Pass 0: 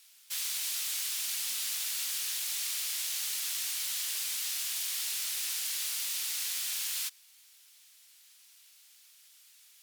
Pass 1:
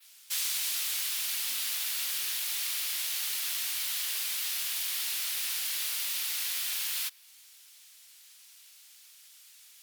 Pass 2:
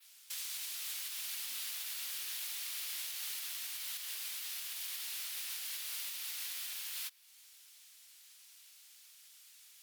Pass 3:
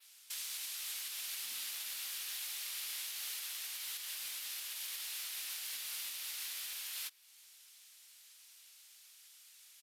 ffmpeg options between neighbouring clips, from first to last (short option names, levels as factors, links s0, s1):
-af "adynamicequalizer=threshold=0.00398:dfrequency=7200:dqfactor=1:tfrequency=7200:tqfactor=1:attack=5:release=100:ratio=0.375:range=3:mode=cutabove:tftype=bell,volume=1.58"
-af "alimiter=level_in=1.33:limit=0.0631:level=0:latency=1:release=358,volume=0.75,volume=0.631"
-af "aresample=32000,aresample=44100"